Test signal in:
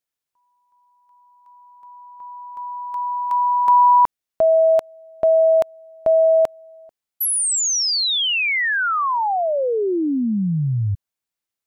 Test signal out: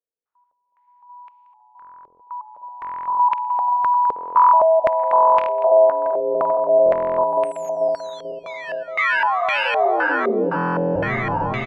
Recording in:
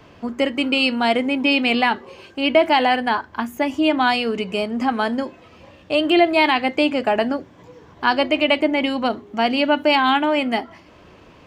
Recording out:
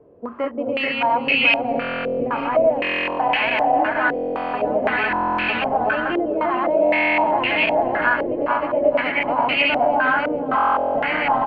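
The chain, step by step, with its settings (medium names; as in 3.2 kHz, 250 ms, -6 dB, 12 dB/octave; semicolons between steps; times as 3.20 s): backward echo that repeats 219 ms, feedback 84%, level 0 dB; bass shelf 440 Hz -10.5 dB; frequency-shifting echo 435 ms, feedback 44%, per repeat -120 Hz, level -11.5 dB; compression 8:1, threshold -19 dBFS; overload inside the chain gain 14.5 dB; harmonic-percussive split percussive -4 dB; delay 624 ms -13 dB; buffer glitch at 1.80/2.80/4.14/5.09/6.84/10.56 s, samples 1024, times 16; step-sequenced low-pass 3.9 Hz 460–2500 Hz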